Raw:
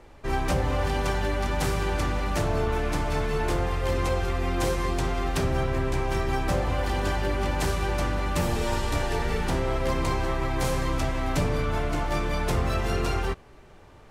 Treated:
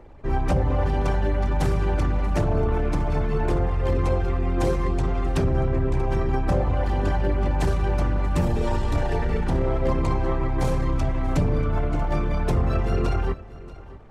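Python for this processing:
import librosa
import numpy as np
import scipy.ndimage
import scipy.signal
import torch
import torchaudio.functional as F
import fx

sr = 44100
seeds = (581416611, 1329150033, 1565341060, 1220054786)

p1 = fx.envelope_sharpen(x, sr, power=1.5)
p2 = p1 + fx.echo_single(p1, sr, ms=635, db=-18.5, dry=0)
y = p2 * 10.0 ** (4.0 / 20.0)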